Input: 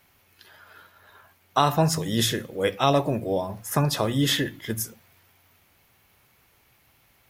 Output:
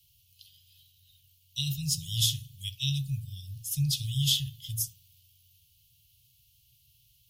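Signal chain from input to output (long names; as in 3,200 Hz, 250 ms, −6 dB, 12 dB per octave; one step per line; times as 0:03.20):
Chebyshev band-stop filter 140–2,900 Hz, order 5
harmonic generator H 2 −31 dB, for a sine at −11 dBFS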